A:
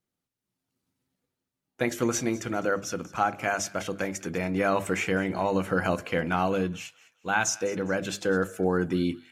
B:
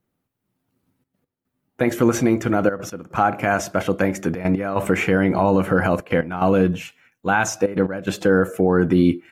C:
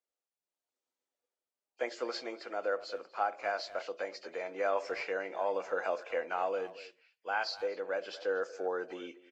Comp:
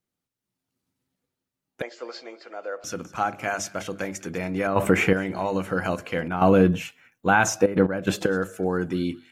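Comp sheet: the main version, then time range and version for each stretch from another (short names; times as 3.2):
A
1.82–2.84 from C
4.67–5.13 from B
6.28–8.26 from B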